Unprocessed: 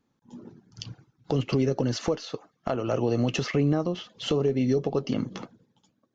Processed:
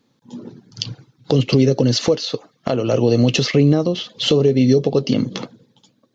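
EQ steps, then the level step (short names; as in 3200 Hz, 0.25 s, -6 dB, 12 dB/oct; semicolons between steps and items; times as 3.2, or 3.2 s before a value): graphic EQ 125/250/500/1000/2000/4000 Hz +11/+8/+11/+5/+5/+10 dB; dynamic EQ 1200 Hz, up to -5 dB, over -29 dBFS, Q 0.7; high shelf 2500 Hz +11 dB; -2.0 dB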